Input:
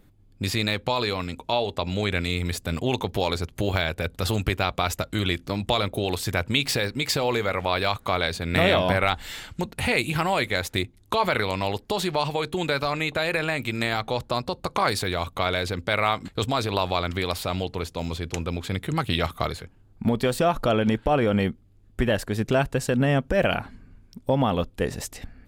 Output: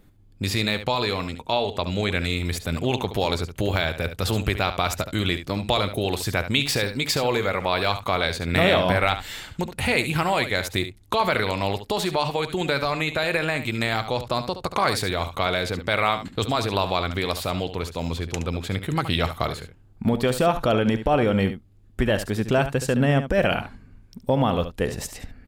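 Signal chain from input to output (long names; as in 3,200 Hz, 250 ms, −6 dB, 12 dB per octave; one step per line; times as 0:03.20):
single-tap delay 71 ms −11 dB
level +1 dB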